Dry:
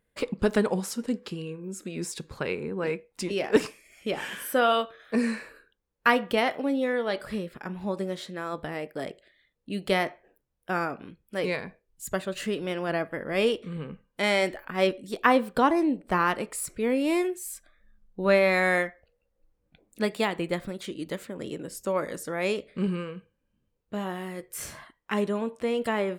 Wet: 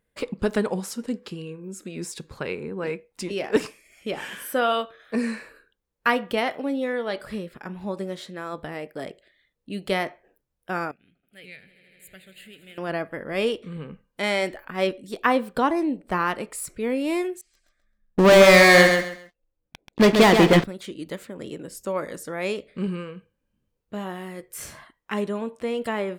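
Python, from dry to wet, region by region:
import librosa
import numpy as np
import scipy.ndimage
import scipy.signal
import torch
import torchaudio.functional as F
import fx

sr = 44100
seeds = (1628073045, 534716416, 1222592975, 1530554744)

y = fx.chain(x, sr, fx.tone_stack(knobs='5-5-5'),
    fx.fixed_phaser(hz=2500.0, stages=4),
    fx.echo_swell(ms=80, loudest=5, wet_db=-18), at=(10.91, 12.78))
y = fx.chain(y, sr, fx.lowpass(hz=4400.0, slope=24),
    fx.leveller(passes=5),
    fx.echo_feedback(ms=133, feedback_pct=24, wet_db=-6.0), at=(17.41, 20.64))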